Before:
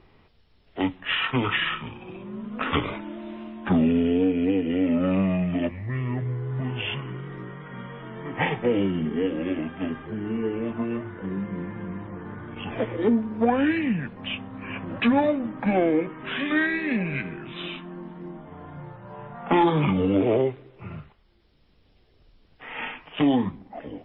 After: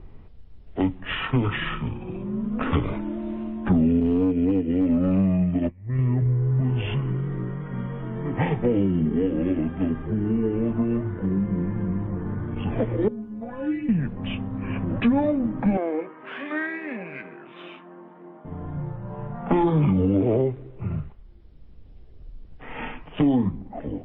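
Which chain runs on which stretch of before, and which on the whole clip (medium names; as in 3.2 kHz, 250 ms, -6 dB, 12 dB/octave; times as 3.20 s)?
4.00–5.99 s: expander -23 dBFS + overload inside the chain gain 18 dB
13.08–13.89 s: inharmonic resonator 62 Hz, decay 0.79 s, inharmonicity 0.03 + word length cut 12-bit, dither none
15.77–18.45 s: partial rectifier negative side -3 dB + band-pass 560–2700 Hz
whole clip: tilt EQ -3.5 dB/octave; compression 2:1, threshold -21 dBFS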